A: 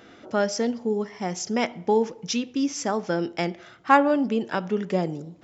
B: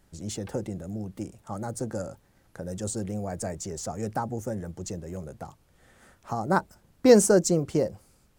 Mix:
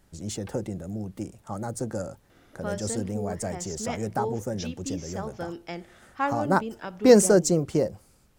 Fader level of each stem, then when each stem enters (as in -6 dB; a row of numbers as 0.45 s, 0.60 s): -10.0 dB, +1.0 dB; 2.30 s, 0.00 s